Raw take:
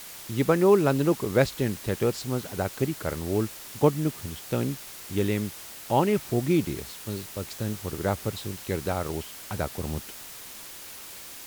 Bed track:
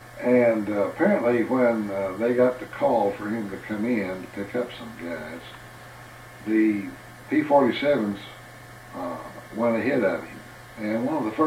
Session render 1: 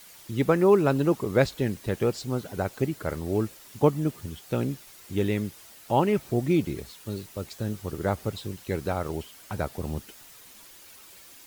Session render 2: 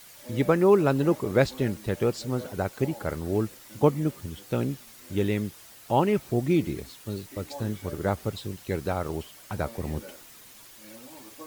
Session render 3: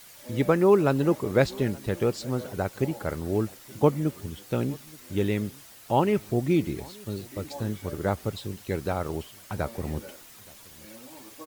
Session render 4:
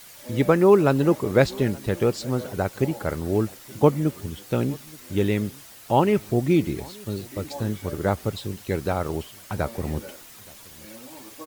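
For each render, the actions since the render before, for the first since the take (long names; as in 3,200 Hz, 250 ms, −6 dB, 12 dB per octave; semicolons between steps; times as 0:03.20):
broadband denoise 9 dB, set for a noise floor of −43 dBFS
mix in bed track −23 dB
slap from a distant wall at 150 metres, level −24 dB
level +3.5 dB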